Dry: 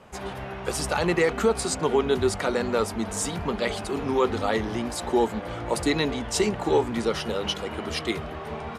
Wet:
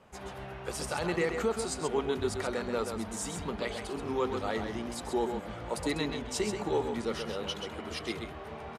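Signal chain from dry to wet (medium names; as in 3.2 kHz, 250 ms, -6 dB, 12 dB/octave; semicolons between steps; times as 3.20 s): delay 131 ms -6.5 dB; trim -8.5 dB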